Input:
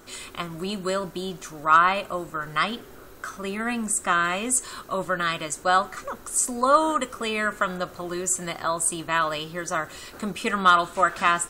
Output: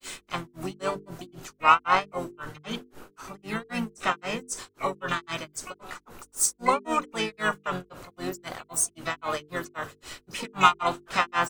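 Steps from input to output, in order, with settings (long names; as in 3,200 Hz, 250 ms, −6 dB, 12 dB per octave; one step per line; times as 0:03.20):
pitch-shifted copies added −5 semitones −6 dB, +12 semitones −11 dB
granular cloud 221 ms, grains 3.8 per second, pitch spread up and down by 0 semitones
mains-hum notches 50/100/150/200/250/300/350/400/450 Hz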